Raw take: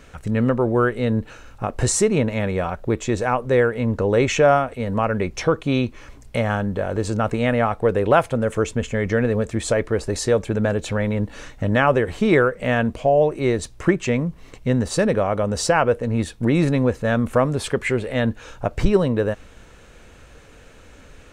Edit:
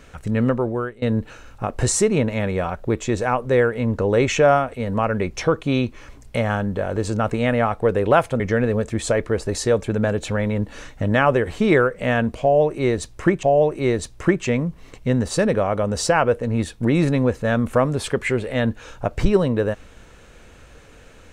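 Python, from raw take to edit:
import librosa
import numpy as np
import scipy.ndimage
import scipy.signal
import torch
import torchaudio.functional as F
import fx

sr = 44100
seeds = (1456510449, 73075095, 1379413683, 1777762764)

y = fx.edit(x, sr, fx.fade_out_to(start_s=0.49, length_s=0.53, floor_db=-22.5),
    fx.cut(start_s=8.4, length_s=0.61),
    fx.repeat(start_s=13.03, length_s=1.01, count=2), tone=tone)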